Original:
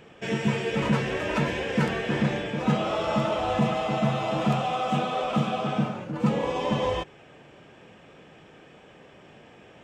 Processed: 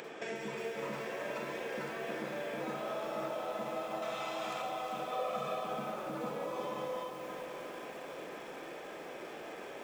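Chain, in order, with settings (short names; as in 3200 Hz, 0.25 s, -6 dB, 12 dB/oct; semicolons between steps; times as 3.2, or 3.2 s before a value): Chebyshev high-pass 370 Hz, order 2; compressor 10:1, threshold -43 dBFS, peak gain reduction 20 dB; bell 2900 Hz -8.5 dB 0.2 oct; upward compressor, threshold -49 dBFS; 4.02–4.62 tilt shelf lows -8.5 dB, about 780 Hz; 5.12–5.63 comb 1.7 ms, depth 82%; darkening echo 0.529 s, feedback 64%, low-pass 3700 Hz, level -9.5 dB; reverb RT60 0.30 s, pre-delay 37 ms, DRR 3 dB; lo-fi delay 0.358 s, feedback 55%, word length 9-bit, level -8.5 dB; gain +4 dB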